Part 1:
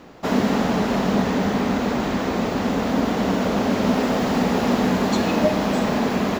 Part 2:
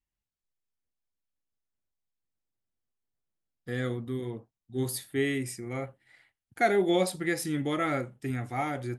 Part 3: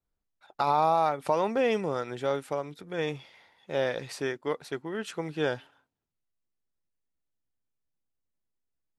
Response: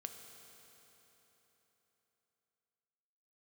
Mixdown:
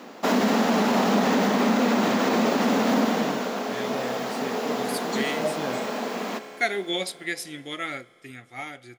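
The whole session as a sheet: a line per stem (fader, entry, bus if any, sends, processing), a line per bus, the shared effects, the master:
+0.5 dB, 0.00 s, bus A, send −4.5 dB, high-pass filter 400 Hz 12 dB per octave; automatic ducking −21 dB, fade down 0.70 s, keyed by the second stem
−3.5 dB, 0.00 s, no bus, send −11 dB, meter weighting curve D; expander for the loud parts 1.5 to 1, over −45 dBFS
−6.5 dB, 0.20 s, bus A, no send, no processing
bus A: 0.0 dB, parametric band 220 Hz +14.5 dB 0.59 octaves; brickwall limiter −15 dBFS, peak gain reduction 8 dB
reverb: on, RT60 3.9 s, pre-delay 3 ms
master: high-shelf EQ 6,300 Hz +4 dB

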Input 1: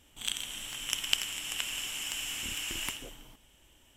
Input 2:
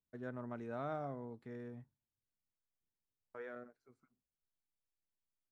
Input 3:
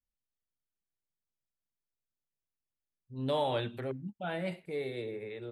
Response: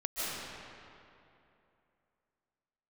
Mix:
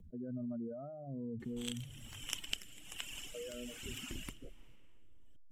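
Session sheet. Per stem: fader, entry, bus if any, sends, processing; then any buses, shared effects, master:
−7.5 dB, 1.40 s, send −23 dB, reverb reduction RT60 1.9 s
−1.5 dB, 0.00 s, no send, expanding power law on the bin magnitudes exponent 2.7; brickwall limiter −40 dBFS, peak gain reduction 7.5 dB; envelope flattener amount 70%
muted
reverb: on, RT60 2.8 s, pre-delay 110 ms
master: low-shelf EQ 400 Hz +9.5 dB; rotating-speaker cabinet horn 1.2 Hz

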